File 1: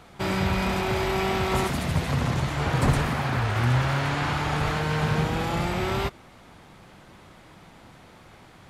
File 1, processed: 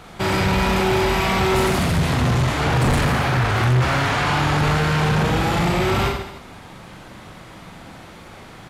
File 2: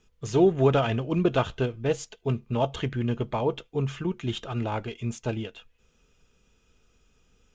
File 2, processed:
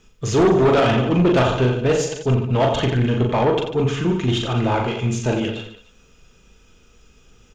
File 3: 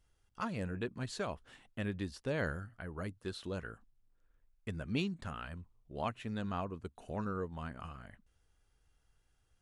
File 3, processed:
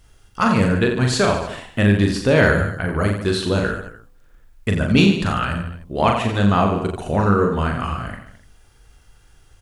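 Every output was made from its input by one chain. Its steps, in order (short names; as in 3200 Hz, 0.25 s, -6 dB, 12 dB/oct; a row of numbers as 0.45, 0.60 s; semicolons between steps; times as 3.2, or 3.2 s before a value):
de-hum 71.54 Hz, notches 15; on a send: reverse bouncing-ball echo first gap 40 ms, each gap 1.2×, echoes 5; on the sum: soft clip -21 dBFS; match loudness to -19 LUFS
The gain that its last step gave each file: +7.5, +10.0, +20.0 dB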